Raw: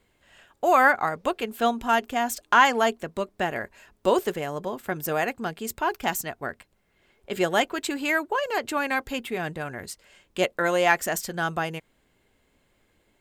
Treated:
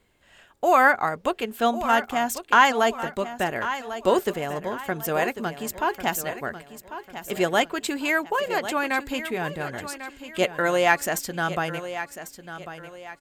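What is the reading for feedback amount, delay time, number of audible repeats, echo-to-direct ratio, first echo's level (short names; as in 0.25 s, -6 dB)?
36%, 1.096 s, 3, -11.5 dB, -12.0 dB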